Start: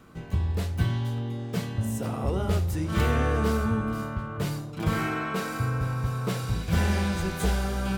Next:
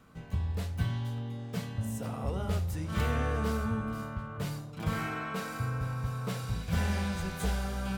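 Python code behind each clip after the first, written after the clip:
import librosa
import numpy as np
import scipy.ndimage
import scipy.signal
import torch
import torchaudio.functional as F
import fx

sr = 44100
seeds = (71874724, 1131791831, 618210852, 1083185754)

y = fx.peak_eq(x, sr, hz=350.0, db=-8.5, octaves=0.33)
y = F.gain(torch.from_numpy(y), -5.5).numpy()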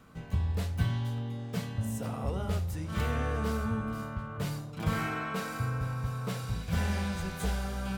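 y = fx.rider(x, sr, range_db=10, speed_s=2.0)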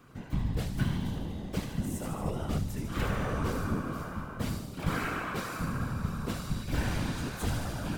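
y = fx.whisperise(x, sr, seeds[0])
y = fx.echo_wet_highpass(y, sr, ms=75, feedback_pct=71, hz=3800.0, wet_db=-6.0)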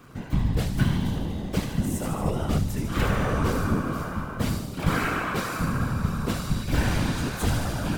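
y = fx.dmg_crackle(x, sr, seeds[1], per_s=150.0, level_db=-54.0)
y = F.gain(torch.from_numpy(y), 7.0).numpy()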